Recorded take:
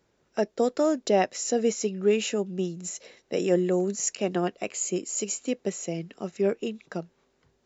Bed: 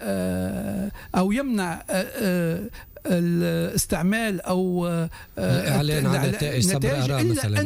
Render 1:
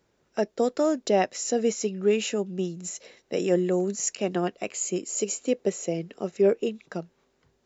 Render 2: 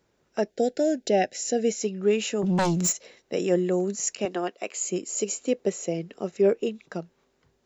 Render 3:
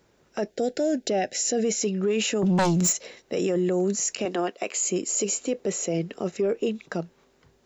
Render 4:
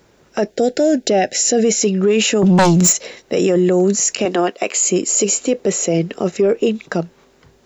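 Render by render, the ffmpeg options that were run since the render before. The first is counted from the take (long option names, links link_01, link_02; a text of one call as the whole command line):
ffmpeg -i in.wav -filter_complex "[0:a]asettb=1/sr,asplit=3[link_01][link_02][link_03];[link_01]atrim=end=5.074[link_04];[link_02]atrim=start=5.07:end=6.69,asetpts=PTS-STARTPTS,afade=type=in:duration=0.004:curve=qsin,afade=type=out:start_time=1.616:duration=0.004:curve=qsin,equalizer=frequency=470:width=1.5:gain=6[link_05];[link_03]atrim=start=6.686[link_06];[link_04][link_05]acrossfade=duration=0.004:curve1=hsin:curve2=qsin[link_07];[link_07][link_06]acrossfade=duration=0.004:curve1=qsin:curve2=hsin" out.wav
ffmpeg -i in.wav -filter_complex "[0:a]asettb=1/sr,asplit=3[link_01][link_02][link_03];[link_01]atrim=end=0.504[link_04];[link_02]atrim=start=0.5:end=1.83,asetpts=PTS-STARTPTS,afade=type=in:duration=0.004:curve=qsin,afade=type=out:start_time=1.326:duration=0.004:curve=qsin,asuperstop=centerf=1100:order=12:qfactor=1.9[link_05];[link_03]atrim=start=1.826[link_06];[link_04][link_05]acrossfade=duration=0.004:curve1=hsin:curve2=qsin[link_07];[link_07][link_06]acrossfade=duration=0.004:curve1=qsin:curve2=hsin,asplit=3[link_08][link_09][link_10];[link_08]afade=type=out:start_time=2.42:duration=0.02[link_11];[link_09]aeval=exprs='0.112*sin(PI/2*3.55*val(0)/0.112)':channel_layout=same,afade=type=in:start_time=2.42:duration=0.02,afade=type=out:start_time=2.91:duration=0.02[link_12];[link_10]afade=type=in:start_time=2.91:duration=0.02[link_13];[link_11][link_12][link_13]amix=inputs=3:normalize=0,asettb=1/sr,asplit=3[link_14][link_15][link_16];[link_14]atrim=end=4.254[link_17];[link_15]atrim=start=4.25:end=4.77,asetpts=PTS-STARTPTS,afade=type=in:duration=0.004:curve=qsin,afade=type=out:start_time=0.516:duration=0.004:curve=qsin,highpass=330[link_18];[link_16]atrim=start=4.766[link_19];[link_17][link_18]acrossfade=duration=0.004:curve1=hsin:curve2=qsin[link_20];[link_20][link_19]acrossfade=duration=0.004:curve1=qsin:curve2=hsin" out.wav
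ffmpeg -i in.wav -af "acontrast=70,alimiter=limit=-17.5dB:level=0:latency=1:release=23" out.wav
ffmpeg -i in.wav -af "volume=10dB" out.wav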